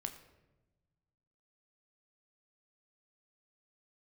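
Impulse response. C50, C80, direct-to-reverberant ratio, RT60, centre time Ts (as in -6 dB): 11.0 dB, 12.5 dB, 5.5 dB, 1.1 s, 14 ms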